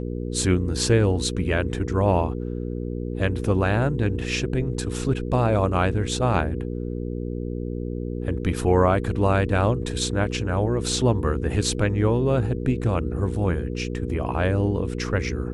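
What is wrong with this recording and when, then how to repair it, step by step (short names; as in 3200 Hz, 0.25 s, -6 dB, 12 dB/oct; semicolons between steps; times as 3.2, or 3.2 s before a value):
hum 60 Hz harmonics 8 -29 dBFS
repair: de-hum 60 Hz, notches 8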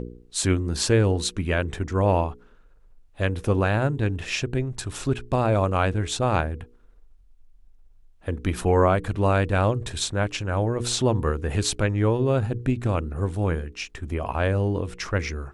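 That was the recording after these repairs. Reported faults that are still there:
none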